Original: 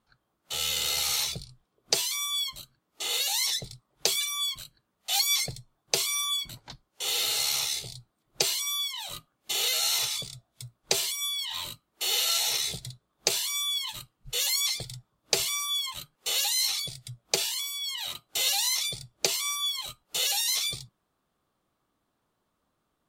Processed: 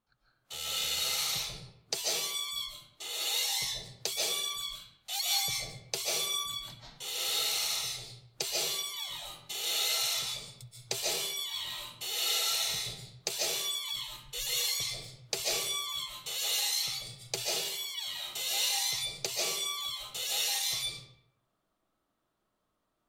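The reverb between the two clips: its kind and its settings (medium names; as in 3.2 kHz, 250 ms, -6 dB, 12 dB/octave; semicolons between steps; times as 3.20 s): algorithmic reverb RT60 0.77 s, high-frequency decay 0.7×, pre-delay 105 ms, DRR -5 dB; trim -9 dB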